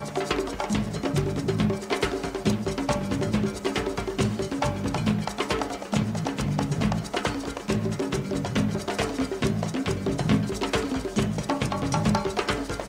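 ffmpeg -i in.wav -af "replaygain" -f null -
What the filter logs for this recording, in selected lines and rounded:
track_gain = +8.0 dB
track_peak = 0.240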